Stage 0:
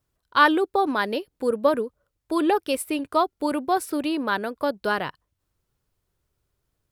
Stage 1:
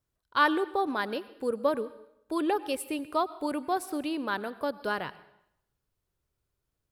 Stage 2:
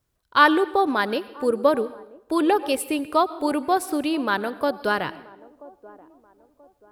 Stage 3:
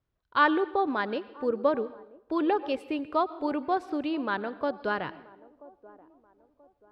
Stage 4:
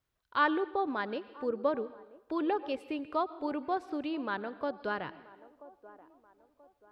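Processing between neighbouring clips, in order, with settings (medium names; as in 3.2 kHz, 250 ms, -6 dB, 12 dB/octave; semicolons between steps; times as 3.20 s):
plate-style reverb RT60 0.76 s, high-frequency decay 0.95×, pre-delay 85 ms, DRR 16.5 dB; trim -6.5 dB
feedback echo behind a band-pass 982 ms, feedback 34%, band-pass 480 Hz, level -20 dB; trim +8 dB
distance through air 200 m; trim -5.5 dB
tape noise reduction on one side only encoder only; trim -5 dB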